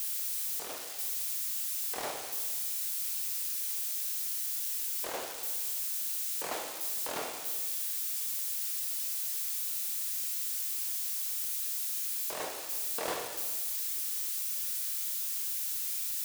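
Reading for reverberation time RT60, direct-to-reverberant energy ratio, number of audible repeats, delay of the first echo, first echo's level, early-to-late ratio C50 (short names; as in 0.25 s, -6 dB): 1.3 s, 2.0 dB, none, none, none, 5.0 dB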